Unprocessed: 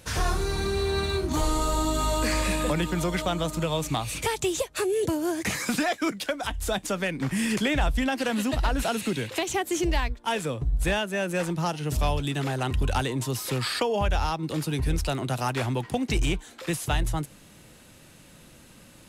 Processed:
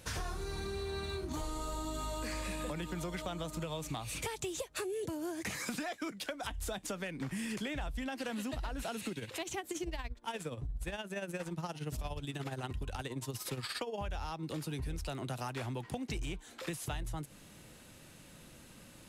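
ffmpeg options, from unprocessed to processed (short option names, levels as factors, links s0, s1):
-filter_complex "[0:a]asplit=3[s0][s1][s2];[s0]afade=t=out:st=9.09:d=0.02[s3];[s1]tremolo=f=17:d=0.66,afade=t=in:st=9.09:d=0.02,afade=t=out:st=13.97:d=0.02[s4];[s2]afade=t=in:st=13.97:d=0.02[s5];[s3][s4][s5]amix=inputs=3:normalize=0,acompressor=threshold=0.0251:ratio=6,volume=0.631"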